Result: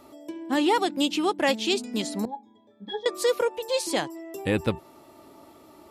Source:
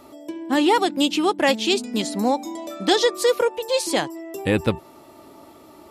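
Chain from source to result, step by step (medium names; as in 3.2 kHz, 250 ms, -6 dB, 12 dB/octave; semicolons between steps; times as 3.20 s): 2.25–3.06 s: pitch-class resonator G#, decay 0.15 s; trim -4.5 dB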